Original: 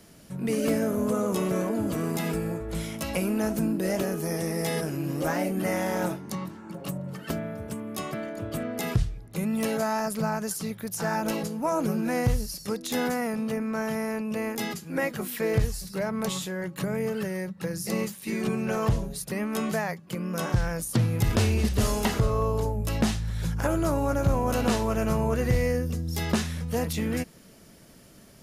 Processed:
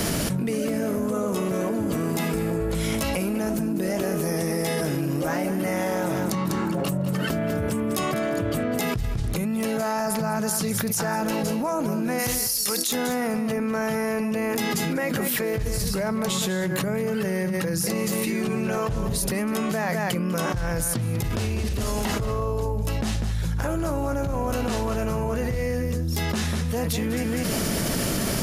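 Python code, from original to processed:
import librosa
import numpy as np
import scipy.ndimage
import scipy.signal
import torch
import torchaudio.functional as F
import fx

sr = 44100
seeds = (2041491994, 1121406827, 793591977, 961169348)

y = fx.tilt_eq(x, sr, slope=4.0, at=(12.18, 12.91), fade=0.02)
y = y + 10.0 ** (-12.0 / 20.0) * np.pad(y, (int(198 * sr / 1000.0), 0))[:len(y)]
y = fx.env_flatten(y, sr, amount_pct=100)
y = F.gain(torch.from_numpy(y), -7.5).numpy()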